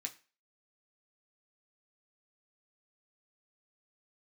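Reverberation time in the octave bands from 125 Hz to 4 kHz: 0.30, 0.35, 0.35, 0.35, 0.35, 0.35 s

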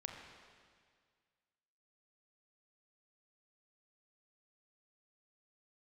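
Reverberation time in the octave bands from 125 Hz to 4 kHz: 2.0, 1.9, 1.9, 1.9, 1.9, 1.9 s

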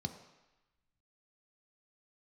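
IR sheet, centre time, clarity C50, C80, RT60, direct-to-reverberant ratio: 15 ms, 10.0 dB, 11.5 dB, 1.0 s, 6.0 dB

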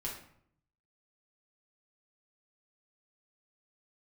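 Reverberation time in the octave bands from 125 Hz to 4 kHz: 1.1, 0.85, 0.65, 0.60, 0.55, 0.45 s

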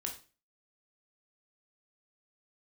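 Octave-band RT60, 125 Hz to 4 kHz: 0.45, 0.40, 0.35, 0.35, 0.35, 0.35 s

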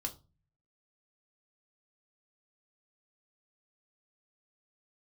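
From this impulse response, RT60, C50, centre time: 0.30 s, 17.0 dB, 8 ms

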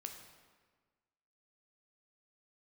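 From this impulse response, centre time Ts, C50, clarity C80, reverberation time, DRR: 32 ms, 6.5 dB, 8.0 dB, 1.5 s, 4.0 dB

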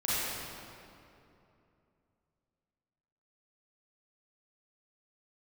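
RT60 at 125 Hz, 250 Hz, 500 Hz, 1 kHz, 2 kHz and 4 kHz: 3.4, 3.2, 2.9, 2.6, 2.2, 1.8 s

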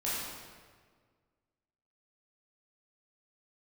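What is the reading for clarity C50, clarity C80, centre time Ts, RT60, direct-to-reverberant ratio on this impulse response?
-2.0 dB, 0.0 dB, 0.11 s, 1.7 s, -9.0 dB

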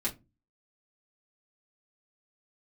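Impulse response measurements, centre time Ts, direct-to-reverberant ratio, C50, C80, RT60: 13 ms, -5.5 dB, 17.5 dB, 25.5 dB, 0.25 s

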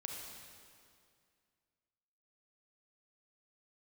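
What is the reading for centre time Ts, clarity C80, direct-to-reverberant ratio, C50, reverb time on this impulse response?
93 ms, 2.5 dB, 0.0 dB, 1.0 dB, 2.2 s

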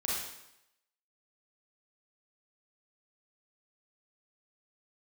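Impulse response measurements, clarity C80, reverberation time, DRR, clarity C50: 3.0 dB, 0.85 s, -6.0 dB, -1.5 dB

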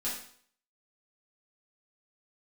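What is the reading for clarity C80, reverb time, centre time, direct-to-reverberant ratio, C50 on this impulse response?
7.5 dB, 0.55 s, 42 ms, -9.0 dB, 3.5 dB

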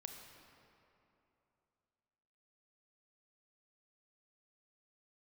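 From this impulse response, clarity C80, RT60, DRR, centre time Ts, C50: 5.0 dB, 3.0 s, 3.0 dB, 70 ms, 4.0 dB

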